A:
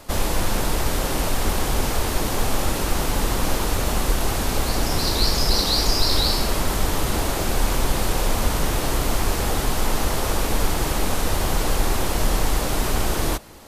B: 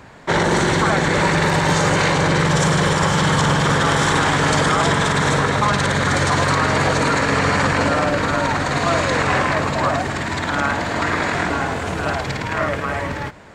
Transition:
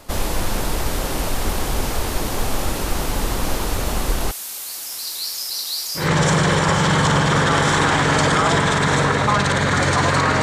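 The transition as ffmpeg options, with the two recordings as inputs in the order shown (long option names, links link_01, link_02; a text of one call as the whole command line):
ffmpeg -i cue0.wav -i cue1.wav -filter_complex "[0:a]asettb=1/sr,asplit=3[link_01][link_02][link_03];[link_01]atrim=end=4.314[link_04];[link_02]atrim=start=4.31:end=6.1,asetpts=PTS-STARTPTS,afade=type=in:duration=0.004:curve=qsin,afade=type=out:start_time=1.786:duration=0.004:curve=qsin,aderivative[link_05];[link_03]atrim=start=6.096[link_06];[link_04][link_05]acrossfade=duration=0.004:curve1=hsin:curve2=qsin[link_07];[link_07][link_06]acrossfade=duration=0.004:curve1=qsin:curve2=hsin,apad=whole_dur=10.42,atrim=end=10.42,atrim=end=6.1,asetpts=PTS-STARTPTS[link_08];[1:a]atrim=start=2.28:end=6.76,asetpts=PTS-STARTPTS[link_09];[link_08][link_09]acrossfade=duration=0.16:curve1=tri:curve2=tri" out.wav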